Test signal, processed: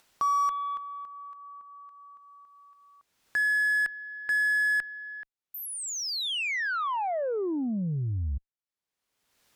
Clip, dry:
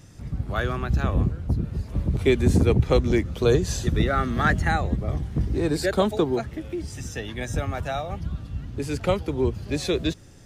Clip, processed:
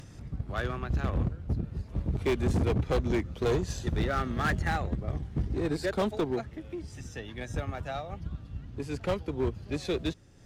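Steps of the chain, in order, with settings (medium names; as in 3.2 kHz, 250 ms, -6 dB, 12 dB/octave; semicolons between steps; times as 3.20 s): treble shelf 7.8 kHz -9 dB; Chebyshev shaper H 4 -35 dB, 7 -24 dB, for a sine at -8 dBFS; upward compressor, threshold -35 dBFS; overload inside the chain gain 18.5 dB; trim -3.5 dB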